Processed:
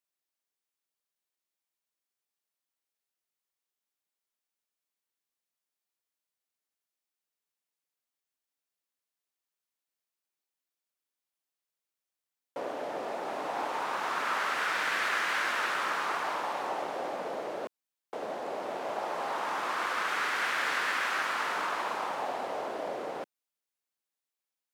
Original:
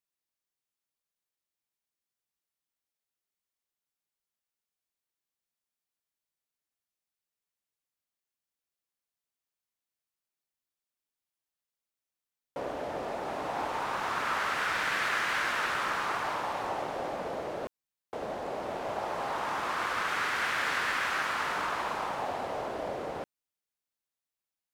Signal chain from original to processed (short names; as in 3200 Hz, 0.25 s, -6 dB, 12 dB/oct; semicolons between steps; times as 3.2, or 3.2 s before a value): HPF 240 Hz 12 dB/oct